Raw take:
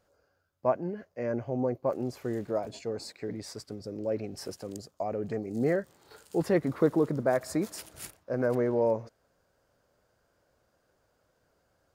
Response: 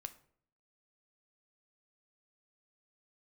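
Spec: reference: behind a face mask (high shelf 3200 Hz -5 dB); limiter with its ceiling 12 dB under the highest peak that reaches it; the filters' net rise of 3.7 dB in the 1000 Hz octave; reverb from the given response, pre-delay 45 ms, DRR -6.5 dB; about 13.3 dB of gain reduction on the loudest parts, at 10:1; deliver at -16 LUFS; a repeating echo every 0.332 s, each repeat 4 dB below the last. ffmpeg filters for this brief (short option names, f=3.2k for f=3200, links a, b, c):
-filter_complex "[0:a]equalizer=f=1k:t=o:g=5.5,acompressor=threshold=-32dB:ratio=10,alimiter=level_in=8dB:limit=-24dB:level=0:latency=1,volume=-8dB,aecho=1:1:332|664|996|1328|1660|1992|2324|2656|2988:0.631|0.398|0.25|0.158|0.0994|0.0626|0.0394|0.0249|0.0157,asplit=2[a][b];[1:a]atrim=start_sample=2205,adelay=45[c];[b][c]afir=irnorm=-1:irlink=0,volume=10.5dB[d];[a][d]amix=inputs=2:normalize=0,highshelf=f=3.2k:g=-5,volume=18dB"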